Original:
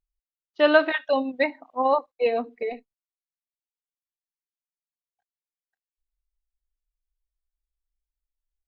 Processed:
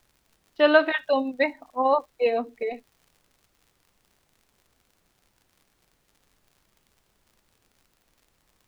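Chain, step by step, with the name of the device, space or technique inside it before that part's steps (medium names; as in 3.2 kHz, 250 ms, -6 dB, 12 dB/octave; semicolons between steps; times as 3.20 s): vinyl LP (crackle -47 dBFS; pink noise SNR 40 dB)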